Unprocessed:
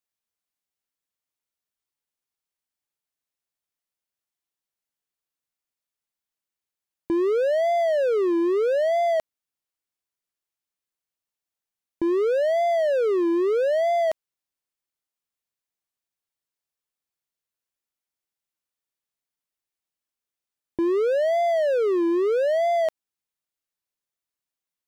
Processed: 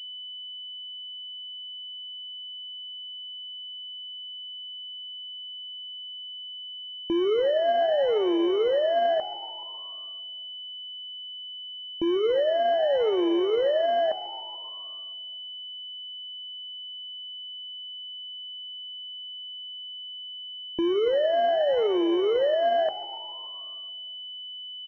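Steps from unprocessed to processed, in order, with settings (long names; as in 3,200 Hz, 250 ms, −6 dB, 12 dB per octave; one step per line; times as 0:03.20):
echo with shifted repeats 143 ms, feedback 64%, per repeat +68 Hz, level −16 dB
coupled-rooms reverb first 0.26 s, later 2.6 s, from −18 dB, DRR 11 dB
switching amplifier with a slow clock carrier 3,000 Hz
level −2 dB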